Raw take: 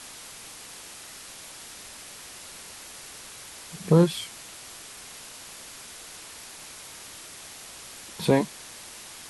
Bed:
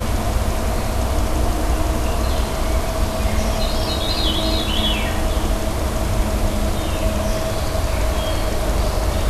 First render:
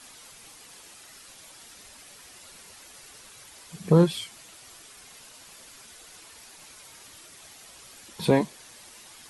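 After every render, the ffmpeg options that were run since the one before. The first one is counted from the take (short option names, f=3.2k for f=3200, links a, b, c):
-af "afftdn=nr=8:nf=-44"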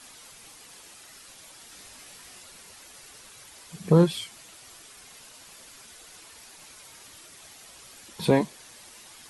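-filter_complex "[0:a]asettb=1/sr,asplit=3[a][b][c];[a]atrim=end=1.704[d];[b]atrim=start=1.7:end=2.43,asetpts=PTS-STARTPTS,afade=t=in:d=0.004:c=qsin,afade=t=out:st=0.726:d=0.004:c=qsin,asplit=2[e][f];[f]adelay=20,volume=-4dB[g];[e][g]amix=inputs=2:normalize=0,atrim=end_sample=32193[h];[c]atrim=start=2.426[i];[d][h]acrossfade=d=0.004:c1=hsin:c2=qsin[j];[j][i]acrossfade=d=0.004:c1=qsin:c2=hsin"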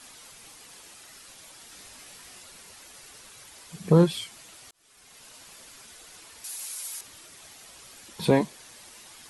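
-filter_complex "[0:a]asettb=1/sr,asplit=3[a][b][c];[a]atrim=end=6.444[d];[b]atrim=start=6.44:end=7.01,asetpts=PTS-STARTPTS,afade=t=in:d=0.004:c=qsin,afade=t=out:st=0.566:d=0.004:c=qsin,aemphasis=mode=production:type=riaa[e];[c]atrim=start=7.006[f];[d][e]acrossfade=d=0.004:c1=hsin:c2=qsin[g];[g][f]acrossfade=d=0.004:c1=qsin:c2=hsin,asplit=2[h][i];[h]atrim=end=4.71,asetpts=PTS-STARTPTS,afade=t=out:st=4.706:d=0.004:c=hsin[j];[i]atrim=start=4.71,asetpts=PTS-STARTPTS,afade=t=in:d=0.61[k];[j][k]concat=n=2:v=0:a=1"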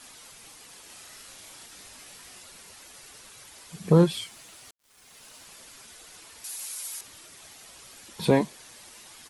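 -filter_complex "[0:a]asplit=3[a][b][c];[a]afade=t=out:st=0.88:d=0.02[d];[b]asplit=2[e][f];[f]adelay=37,volume=-3dB[g];[e][g]amix=inputs=2:normalize=0,afade=t=in:st=0.88:d=0.02,afade=t=out:st=1.65:d=0.02[h];[c]afade=t=in:st=1.65:d=0.02[i];[d][h][i]amix=inputs=3:normalize=0,asettb=1/sr,asplit=3[j][k][l];[j]atrim=end=4.064[m];[k]atrim=start=4.06:end=5.45,asetpts=PTS-STARTPTS,afade=t=in:d=0.004:c=qsin,afade=t=out:st=1.386:d=0.004:c=qsin,aeval=exprs='val(0)*gte(abs(val(0)),0.0015)':c=same[n];[l]atrim=start=5.446[o];[m][n]acrossfade=d=0.004:c1=hsin:c2=qsin[p];[p][o]acrossfade=d=0.004:c1=qsin:c2=hsin"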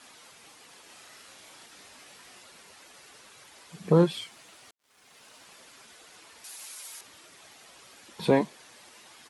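-af "highpass=f=210:p=1,aemphasis=mode=reproduction:type=cd"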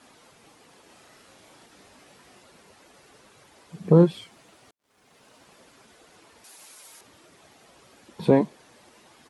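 -af "tiltshelf=f=930:g=6"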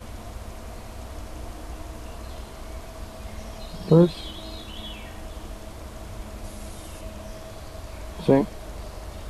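-filter_complex "[1:a]volume=-18dB[a];[0:a][a]amix=inputs=2:normalize=0"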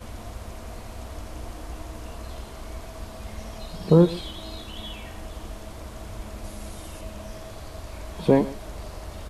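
-af "aecho=1:1:128:0.126"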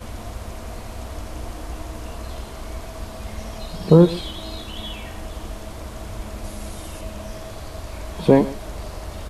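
-af "volume=4.5dB,alimiter=limit=-2dB:level=0:latency=1"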